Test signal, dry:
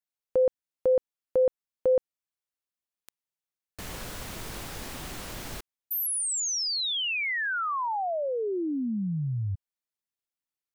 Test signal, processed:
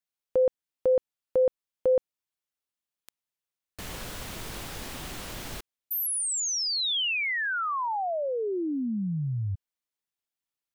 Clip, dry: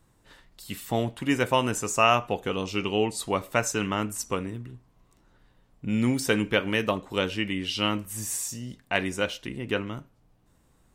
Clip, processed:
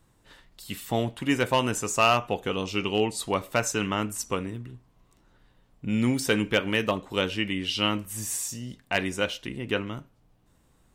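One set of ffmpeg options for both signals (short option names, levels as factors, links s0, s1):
-af "asoftclip=type=hard:threshold=0.211,equalizer=f=3200:t=o:w=0.77:g=2"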